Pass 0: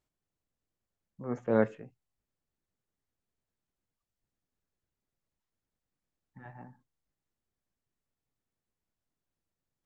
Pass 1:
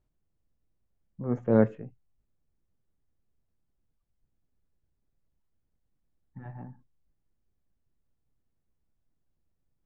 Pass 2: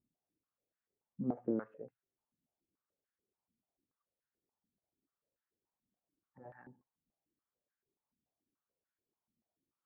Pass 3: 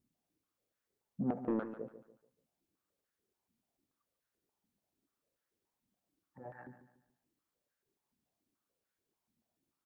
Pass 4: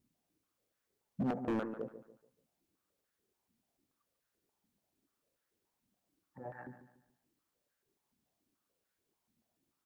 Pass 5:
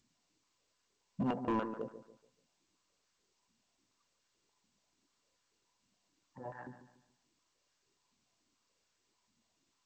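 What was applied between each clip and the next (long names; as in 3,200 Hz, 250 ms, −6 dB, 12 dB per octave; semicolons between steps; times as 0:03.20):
spectral tilt −3 dB per octave
downward compressor 12 to 1, threshold −27 dBFS, peak gain reduction 13 dB; band-pass on a step sequencer 6.9 Hz 230–1,600 Hz; level +5 dB
soft clipping −31.5 dBFS, distortion −12 dB; repeating echo 144 ms, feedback 35%, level −12 dB; level +4.5 dB
hard clipping −33.5 dBFS, distortion −11 dB; level +3 dB
hollow resonant body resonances 1,000/2,800 Hz, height 14 dB, ringing for 55 ms; G.722 64 kbit/s 16,000 Hz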